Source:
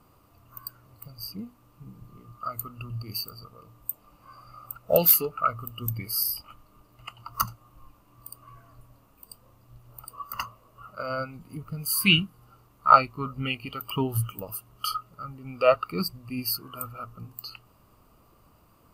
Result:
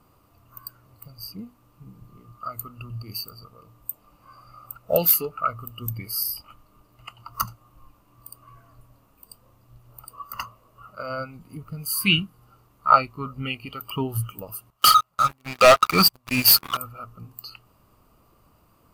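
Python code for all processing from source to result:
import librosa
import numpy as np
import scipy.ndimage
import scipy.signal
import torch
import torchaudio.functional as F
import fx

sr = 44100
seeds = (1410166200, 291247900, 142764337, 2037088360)

y = fx.chain(x, sr, fx.low_shelf_res(hz=560.0, db=-9.0, q=1.5),
    fx.leveller(passes=5), at=(14.7, 16.77))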